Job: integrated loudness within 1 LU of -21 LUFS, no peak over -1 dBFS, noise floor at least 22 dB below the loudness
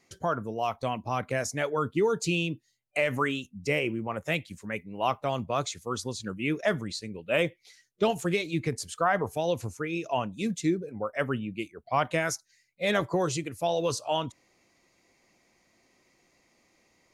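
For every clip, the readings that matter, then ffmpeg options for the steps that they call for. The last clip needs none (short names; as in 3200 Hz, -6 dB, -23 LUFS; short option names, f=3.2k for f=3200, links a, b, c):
loudness -30.0 LUFS; peak -12.0 dBFS; loudness target -21.0 LUFS
-> -af "volume=9dB"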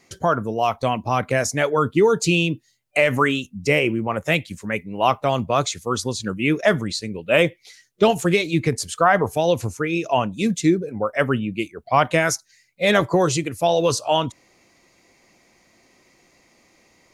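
loudness -21.0 LUFS; peak -3.0 dBFS; noise floor -60 dBFS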